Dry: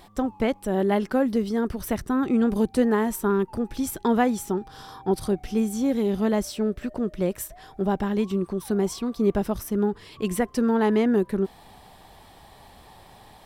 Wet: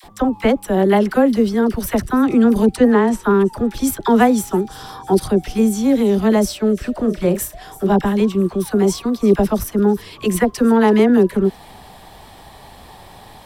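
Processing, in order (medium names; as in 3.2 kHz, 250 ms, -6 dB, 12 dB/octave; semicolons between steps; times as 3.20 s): 2.76–3.23 s: distance through air 83 m; 6.95–7.96 s: doubling 35 ms -9 dB; phase dispersion lows, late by 41 ms, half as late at 780 Hz; on a send: feedback echo behind a high-pass 331 ms, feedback 51%, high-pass 3.1 kHz, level -17 dB; on the sum: trim +8.5 dB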